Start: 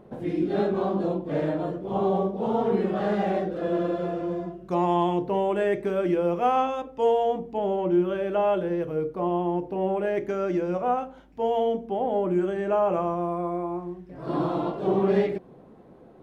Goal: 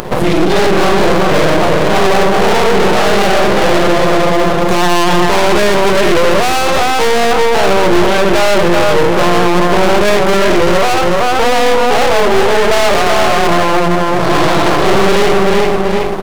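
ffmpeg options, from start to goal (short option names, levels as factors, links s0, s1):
-filter_complex "[0:a]highpass=81,aecho=1:1:382|764|1146|1528:0.531|0.17|0.0544|0.0174,asplit=3[s0][s1][s2];[s0]afade=t=out:st=11.43:d=0.02[s3];[s1]afreqshift=33,afade=t=in:st=11.43:d=0.02,afade=t=out:st=13.47:d=0.02[s4];[s2]afade=t=in:st=13.47:d=0.02[s5];[s3][s4][s5]amix=inputs=3:normalize=0,equalizer=f=250:w=2.7:g=-13.5,asoftclip=type=tanh:threshold=0.0422,acompressor=mode=upward:threshold=0.00398:ratio=2.5,aeval=exprs='max(val(0),0)':c=same,highshelf=f=2600:g=9.5,alimiter=level_in=42.2:limit=0.891:release=50:level=0:latency=1,volume=0.891"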